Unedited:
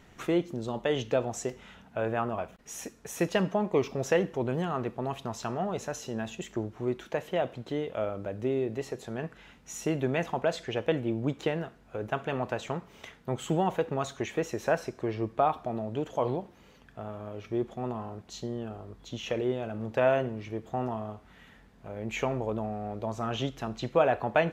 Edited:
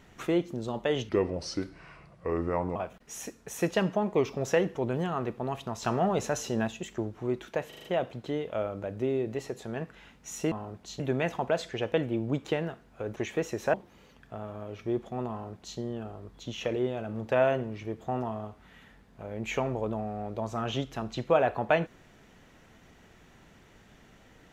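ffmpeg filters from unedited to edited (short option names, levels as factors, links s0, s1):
-filter_complex "[0:a]asplit=13[s0][s1][s2][s3][s4][s5][s6][s7][s8][s9][s10][s11][s12];[s0]atrim=end=1.094[s13];[s1]atrim=start=1.09:end=2.34,asetpts=PTS-STARTPTS,asetrate=33075,aresample=44100[s14];[s2]atrim=start=2.336:end=5.412[s15];[s3]atrim=start=5.408:end=6.262,asetpts=PTS-STARTPTS,volume=1.78[s16];[s4]atrim=start=6.258:end=7.312[s17];[s5]atrim=start=7.268:end=7.312[s18];[s6]atrim=start=7.268:end=7.312[s19];[s7]atrim=start=7.268:end=7.312[s20];[s8]atrim=start=7.268:end=9.942[s21];[s9]atrim=start=17.958:end=18.442[s22];[s10]atrim=start=9.938:end=12.112[s23];[s11]atrim=start=14.168:end=14.742[s24];[s12]atrim=start=16.388[s25];[s13][s14]acrossfade=d=0.004:c1=hsin:c2=hsin[s26];[s26][s15]acrossfade=d=0.004:c1=hsin:c2=hsin[s27];[s27][s16]acrossfade=d=0.004:c1=hsin:c2=hsin[s28];[s28][s17]acrossfade=d=0.004:c1=hsin:c2=hsin[s29];[s29][s18]acrossfade=d=0.004:c1=hsin:c2=hsin[s30];[s30][s19]acrossfade=d=0.004:c1=hsin:c2=hsin[s31];[s31][s20]acrossfade=d=0.004:c1=hsin:c2=hsin[s32];[s32][s21]acrossfade=d=0.004:c1=hsin:c2=hsin[s33];[s33][s22]acrossfade=d=0.004:c1=hsin:c2=hsin[s34];[s34][s23]acrossfade=d=0.004:c1=hsin:c2=hsin[s35];[s35][s24]acrossfade=d=0.004:c1=hsin:c2=hsin[s36];[s36][s25]acrossfade=d=0.004:c1=hsin:c2=hsin"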